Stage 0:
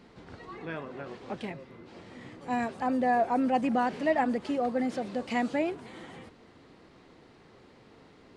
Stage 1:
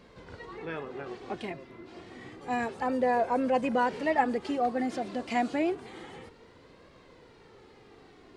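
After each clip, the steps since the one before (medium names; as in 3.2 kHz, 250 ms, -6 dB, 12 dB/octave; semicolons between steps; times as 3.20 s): flange 0.29 Hz, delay 1.8 ms, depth 1.2 ms, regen +38%; trim +5 dB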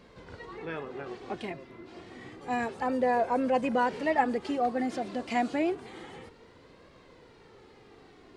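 no audible change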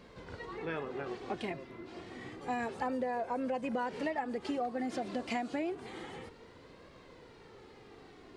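compression 16:1, threshold -31 dBFS, peak gain reduction 13 dB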